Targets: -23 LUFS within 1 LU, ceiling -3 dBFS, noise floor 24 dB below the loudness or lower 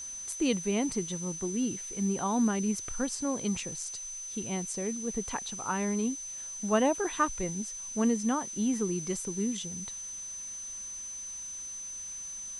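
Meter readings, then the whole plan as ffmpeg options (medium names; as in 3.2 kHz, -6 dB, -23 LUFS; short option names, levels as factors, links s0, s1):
steady tone 6.1 kHz; tone level -38 dBFS; noise floor -41 dBFS; noise floor target -56 dBFS; loudness -32.0 LUFS; peak level -14.0 dBFS; loudness target -23.0 LUFS
-> -af "bandreject=f=6100:w=30"
-af "afftdn=nr=15:nf=-41"
-af "volume=2.82"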